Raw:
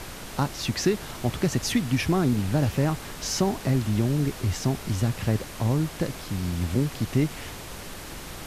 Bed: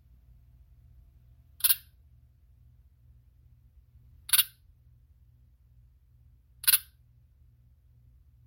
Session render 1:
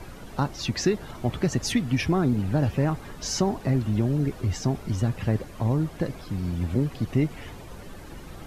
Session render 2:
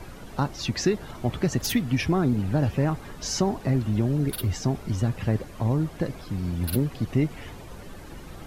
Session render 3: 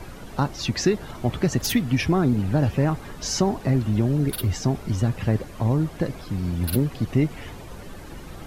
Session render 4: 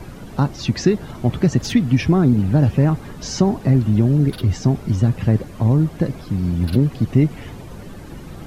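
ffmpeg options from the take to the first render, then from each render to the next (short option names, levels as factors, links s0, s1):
-af "afftdn=nr=12:nf=-39"
-filter_complex "[1:a]volume=0.224[s0];[0:a][s0]amix=inputs=2:normalize=0"
-af "volume=1.33"
-filter_complex "[0:a]acrossover=split=7700[s0][s1];[s1]acompressor=threshold=0.00316:ratio=4:attack=1:release=60[s2];[s0][s2]amix=inputs=2:normalize=0,equalizer=f=160:t=o:w=2.5:g=7"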